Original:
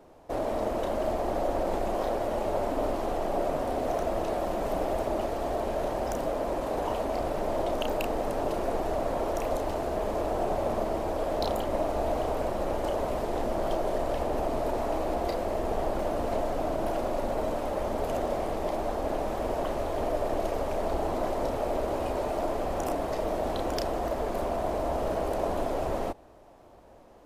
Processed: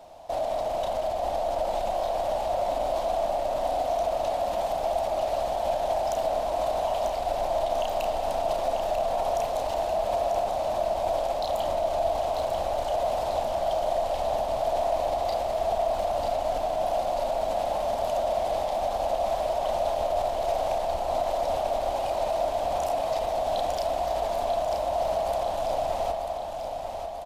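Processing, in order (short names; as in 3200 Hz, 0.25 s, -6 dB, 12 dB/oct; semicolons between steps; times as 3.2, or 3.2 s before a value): EQ curve 110 Hz 0 dB, 420 Hz -8 dB, 670 Hz +13 dB, 1200 Hz +1 dB, 1700 Hz +1 dB, 3600 Hz +12 dB, 12000 Hz +6 dB; limiter -21.5 dBFS, peak gain reduction 14 dB; feedback echo 0.942 s, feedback 59%, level -7 dB; on a send at -7 dB: reverb RT60 2.8 s, pre-delay 45 ms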